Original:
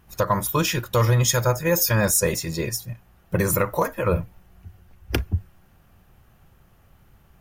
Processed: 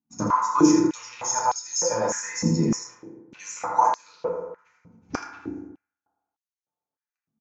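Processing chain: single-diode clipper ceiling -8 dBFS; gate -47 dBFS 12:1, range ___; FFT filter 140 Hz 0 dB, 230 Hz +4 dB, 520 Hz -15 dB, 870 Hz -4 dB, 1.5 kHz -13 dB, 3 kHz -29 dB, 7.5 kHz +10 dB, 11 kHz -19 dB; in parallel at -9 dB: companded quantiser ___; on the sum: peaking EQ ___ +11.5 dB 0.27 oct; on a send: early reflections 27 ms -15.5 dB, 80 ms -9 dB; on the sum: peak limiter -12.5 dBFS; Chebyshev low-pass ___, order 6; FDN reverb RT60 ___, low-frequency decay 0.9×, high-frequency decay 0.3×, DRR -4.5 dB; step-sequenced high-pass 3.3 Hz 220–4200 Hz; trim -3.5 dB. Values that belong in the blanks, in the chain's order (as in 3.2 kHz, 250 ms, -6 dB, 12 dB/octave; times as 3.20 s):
-29 dB, 6-bit, 2.4 kHz, 6.5 kHz, 1.2 s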